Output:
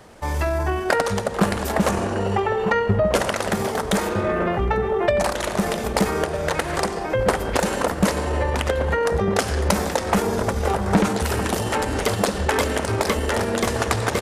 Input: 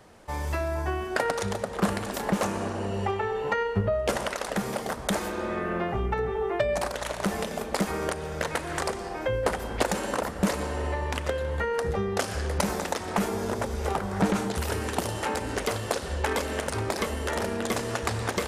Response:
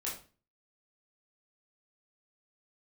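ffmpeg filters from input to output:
-filter_complex "[0:a]asplit=2[link_01][link_02];[link_02]adelay=1633,volume=-8dB,highshelf=frequency=4000:gain=-36.7[link_03];[link_01][link_03]amix=inputs=2:normalize=0,atempo=1.3,acontrast=77"

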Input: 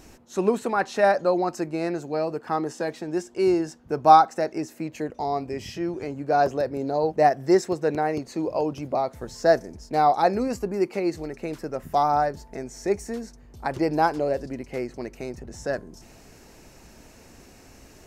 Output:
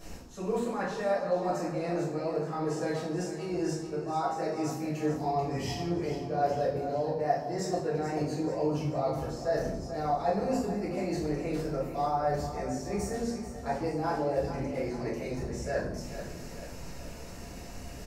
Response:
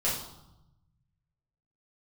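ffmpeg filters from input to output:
-filter_complex "[0:a]areverse,acompressor=threshold=-33dB:ratio=6,areverse,aecho=1:1:436|872|1308|1744|2180:0.282|0.144|0.0733|0.0374|0.0191[link_01];[1:a]atrim=start_sample=2205[link_02];[link_01][link_02]afir=irnorm=-1:irlink=0,volume=-4.5dB"

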